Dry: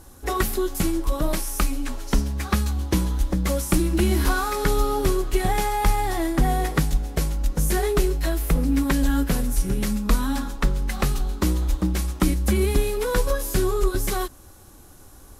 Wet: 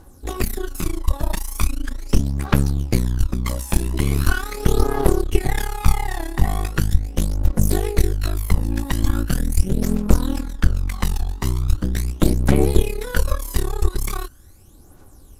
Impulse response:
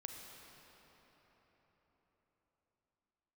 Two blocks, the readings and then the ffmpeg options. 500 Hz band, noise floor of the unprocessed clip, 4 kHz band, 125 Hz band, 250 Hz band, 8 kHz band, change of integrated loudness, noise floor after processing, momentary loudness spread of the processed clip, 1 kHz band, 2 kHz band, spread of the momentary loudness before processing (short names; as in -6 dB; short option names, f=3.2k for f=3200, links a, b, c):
-1.0 dB, -47 dBFS, -0.5 dB, +4.0 dB, 0.0 dB, -0.5 dB, +1.5 dB, -45 dBFS, 6 LU, -3.0 dB, 0.0 dB, 5 LU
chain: -af "aphaser=in_gain=1:out_gain=1:delay=1.2:decay=0.62:speed=0.4:type=triangular,aeval=exprs='1.06*(cos(1*acos(clip(val(0)/1.06,-1,1)))-cos(1*PI/2))+0.473*(cos(4*acos(clip(val(0)/1.06,-1,1)))-cos(4*PI/2))':c=same,volume=-6dB"